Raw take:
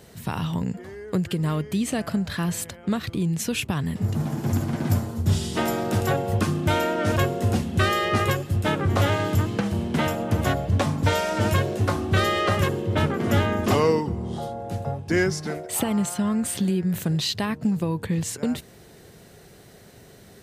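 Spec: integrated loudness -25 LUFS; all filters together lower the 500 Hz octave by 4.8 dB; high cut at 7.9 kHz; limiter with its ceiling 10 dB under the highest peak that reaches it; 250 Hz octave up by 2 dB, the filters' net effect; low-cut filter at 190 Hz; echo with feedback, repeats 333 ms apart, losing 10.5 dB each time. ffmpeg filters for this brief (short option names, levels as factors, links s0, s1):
-af "highpass=190,lowpass=7900,equalizer=f=250:t=o:g=7.5,equalizer=f=500:t=o:g=-9,alimiter=limit=0.1:level=0:latency=1,aecho=1:1:333|666|999:0.299|0.0896|0.0269,volume=1.5"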